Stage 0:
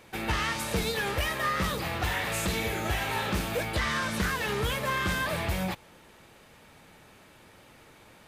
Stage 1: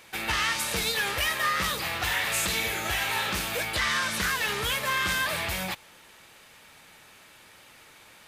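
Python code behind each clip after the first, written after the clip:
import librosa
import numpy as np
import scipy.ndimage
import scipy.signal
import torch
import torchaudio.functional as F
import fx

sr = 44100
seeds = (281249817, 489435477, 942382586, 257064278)

y = fx.tilt_shelf(x, sr, db=-6.5, hz=890.0)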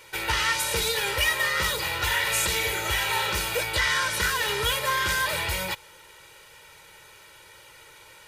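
y = x + 0.92 * np.pad(x, (int(2.1 * sr / 1000.0), 0))[:len(x)]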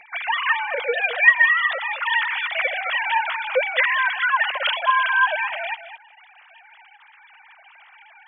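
y = fx.sine_speech(x, sr)
y = y + 10.0 ** (-11.5 / 20.0) * np.pad(y, (int(214 * sr / 1000.0), 0))[:len(y)]
y = F.gain(torch.from_numpy(y), 4.5).numpy()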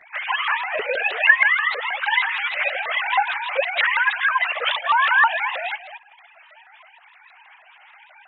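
y = fx.chorus_voices(x, sr, voices=2, hz=0.49, base_ms=15, depth_ms=4.9, mix_pct=70)
y = fx.vibrato_shape(y, sr, shape='saw_up', rate_hz=6.3, depth_cents=250.0)
y = F.gain(torch.from_numpy(y), 2.5).numpy()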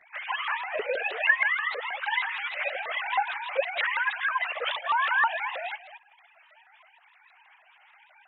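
y = fx.dynamic_eq(x, sr, hz=390.0, q=0.83, threshold_db=-38.0, ratio=4.0, max_db=6)
y = F.gain(torch.from_numpy(y), -8.5).numpy()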